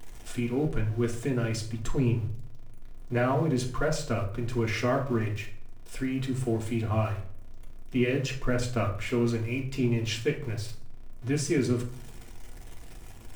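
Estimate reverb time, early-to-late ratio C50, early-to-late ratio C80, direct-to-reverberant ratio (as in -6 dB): 0.55 s, 10.0 dB, 14.5 dB, -1.0 dB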